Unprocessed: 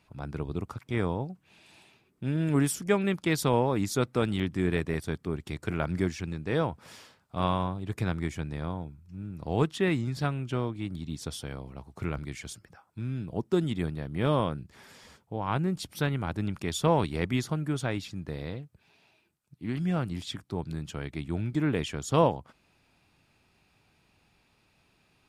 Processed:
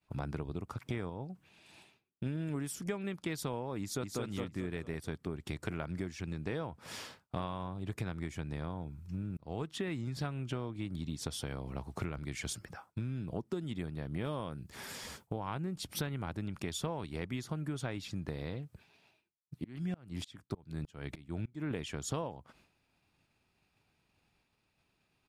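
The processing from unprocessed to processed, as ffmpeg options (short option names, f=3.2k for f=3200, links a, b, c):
-filter_complex "[0:a]asplit=2[a][b];[b]afade=t=in:st=3.8:d=0.01,afade=t=out:st=4.22:d=0.01,aecho=0:1:220|440|660|880:0.749894|0.224968|0.0674905|0.0202471[c];[a][c]amix=inputs=2:normalize=0,asettb=1/sr,asplit=3[d][e][f];[d]atrim=end=14.244[g];[e]atrim=start=14.24:end=15.55,asetpts=PTS-STARTPTS,afade=t=in:d=0.004:c=qsin,afade=t=out:st=1.306:d=0.004:c=qsin,highshelf=f=7.3k:g=9[h];[f]atrim=start=15.546[i];[g][h]acrossfade=d=0.004:c1=hsin:c2=qsin[j];[j][i]acrossfade=d=0.004:c1=qsin:c2=hsin,asettb=1/sr,asplit=3[k][l][m];[k]atrim=end=19.644[n];[l]atrim=start=19.64:end=21.71,asetpts=PTS-STARTPTS,afade=t=in:d=0.004:c=qsin,afade=t=out:st=2.066:d=0.004:c=qsin,aeval=exprs='val(0)*pow(10,-30*if(lt(mod(-3.3*n/s,1),2*abs(-3.3)/1000),1-mod(-3.3*n/s,1)/(2*abs(-3.3)/1000),(mod(-3.3*n/s,1)-2*abs(-3.3)/1000)/(1-2*abs(-3.3)/1000))/20)':c=same[o];[m]atrim=start=21.706[p];[n][o]acrossfade=d=0.004:c1=hsin:c2=qsin[q];[q][p]acrossfade=d=0.004:c1=qsin:c2=hsin,asplit=4[r][s][t][u];[r]atrim=end=1.102[v];[s]atrim=start=1.098:end=2.262,asetpts=PTS-STARTPTS,volume=-4dB[w];[t]atrim=start=2.258:end=9.37,asetpts=PTS-STARTPTS,afade=t=out:st=7.108:d=0.004:c=hsin[x];[u]atrim=start=9.37,asetpts=PTS-STARTPTS,afade=t=in:d=0.73[y];[v][w]acrossfade=d=0.004:c1=hsin:c2=hsin[z];[x][y]concat=n=2:v=0:a=1[aa];[z][aa]acrossfade=d=0.004:c1=hsin:c2=hsin,agate=range=-33dB:threshold=-56dB:ratio=3:detection=peak,acompressor=threshold=-40dB:ratio=12,volume=6dB"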